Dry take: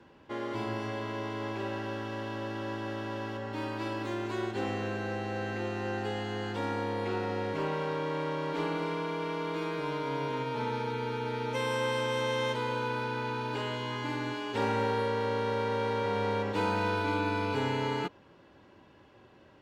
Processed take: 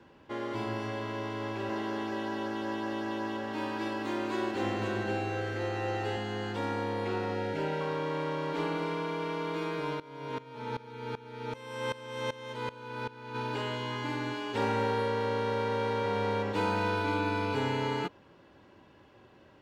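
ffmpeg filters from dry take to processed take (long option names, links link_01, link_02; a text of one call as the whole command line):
ffmpeg -i in.wav -filter_complex "[0:a]asettb=1/sr,asplit=3[link_01][link_02][link_03];[link_01]atrim=end=1.174[link_04];[link_02]atrim=start=1.17:end=6.17,asetpts=PTS-STARTPTS,afade=type=in:duration=0.004:curve=qsin,afade=type=out:start_time=4.996:duration=0.004:curve=qsin,aecho=1:1:522:0.708,atrim=end_sample=220500[link_05];[link_03]atrim=start=6.166[link_06];[link_04][link_05]acrossfade=duration=0.004:curve1=hsin:curve2=qsin[link_07];[link_07][link_06]acrossfade=duration=0.004:curve1=qsin:curve2=hsin,asettb=1/sr,asplit=3[link_08][link_09][link_10];[link_08]atrim=end=7.344[link_11];[link_09]atrim=start=7.34:end=7.81,asetpts=PTS-STARTPTS,afade=type=in:duration=0.004:curve=qsin,afade=type=out:start_time=0.466:duration=0.004:curve=qsin,asuperstop=centerf=1100:order=8:qfactor=4.4[link_12];[link_10]atrim=start=7.806[link_13];[link_11][link_12]acrossfade=duration=0.004:curve1=hsin:curve2=qsin[link_14];[link_14][link_13]acrossfade=duration=0.004:curve1=qsin:curve2=hsin,asplit=3[link_15][link_16][link_17];[link_15]afade=type=out:start_time=9.94:duration=0.02[link_18];[link_16]aeval=exprs='val(0)*pow(10,-19*if(lt(mod(-2.6*n/s,1),2*abs(-2.6)/1000),1-mod(-2.6*n/s,1)/(2*abs(-2.6)/1000),(mod(-2.6*n/s,1)-2*abs(-2.6)/1000)/(1-2*abs(-2.6)/1000))/20)':channel_layout=same,afade=type=in:start_time=9.94:duration=0.02,afade=type=out:start_time=13.34:duration=0.02[link_19];[link_17]afade=type=in:start_time=13.34:duration=0.02[link_20];[link_18][link_19][link_20]amix=inputs=3:normalize=0" out.wav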